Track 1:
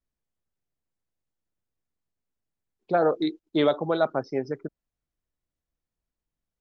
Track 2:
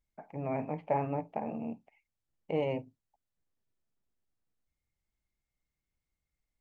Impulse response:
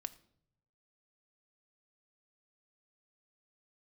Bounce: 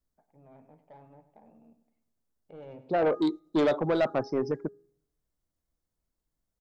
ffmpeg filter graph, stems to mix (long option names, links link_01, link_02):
-filter_complex "[0:a]equalizer=frequency=2600:width_type=o:width=1.7:gain=-4,bandreject=frequency=410.8:width_type=h:width=4,bandreject=frequency=821.6:width_type=h:width=4,bandreject=frequency=1232.4:width_type=h:width=4,bandreject=frequency=1643.2:width_type=h:width=4,volume=2.5dB,asplit=2[link_01][link_02];[link_02]volume=-17dB[link_03];[1:a]asoftclip=type=tanh:threshold=-24.5dB,volume=-8dB,afade=type=in:start_time=2.31:duration=0.71:silence=0.251189,asplit=3[link_04][link_05][link_06];[link_05]volume=-13.5dB[link_07];[link_06]apad=whole_len=291287[link_08];[link_01][link_08]sidechaincompress=threshold=-50dB:ratio=4:attack=5.2:release=638[link_09];[2:a]atrim=start_sample=2205[link_10];[link_03][link_10]afir=irnorm=-1:irlink=0[link_11];[link_07]aecho=0:1:99|198|297|396|495|594|693:1|0.47|0.221|0.104|0.0488|0.0229|0.0108[link_12];[link_09][link_04][link_11][link_12]amix=inputs=4:normalize=0,equalizer=frequency=2400:width=2.3:gain=-6.5,asoftclip=type=tanh:threshold=-19.5dB"